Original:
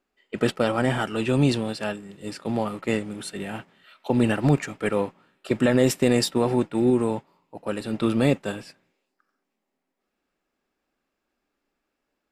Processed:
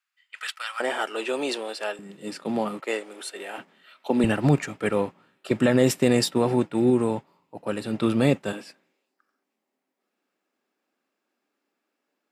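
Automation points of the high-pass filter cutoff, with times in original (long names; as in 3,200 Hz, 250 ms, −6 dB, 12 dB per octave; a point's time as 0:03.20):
high-pass filter 24 dB per octave
1,300 Hz
from 0:00.80 380 Hz
from 0:01.99 160 Hz
from 0:02.80 380 Hz
from 0:03.58 190 Hz
from 0:04.24 55 Hz
from 0:08.53 200 Hz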